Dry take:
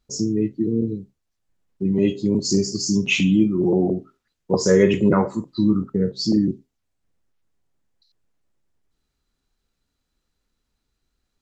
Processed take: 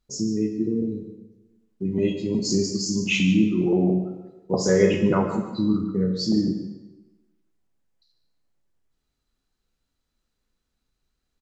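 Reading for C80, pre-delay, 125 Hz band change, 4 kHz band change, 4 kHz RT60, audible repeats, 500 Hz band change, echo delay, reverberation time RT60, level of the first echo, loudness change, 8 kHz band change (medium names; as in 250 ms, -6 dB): 7.5 dB, 3 ms, -2.0 dB, -2.0 dB, 0.90 s, 1, -2.5 dB, 146 ms, 1.1 s, -12.5 dB, -2.5 dB, no reading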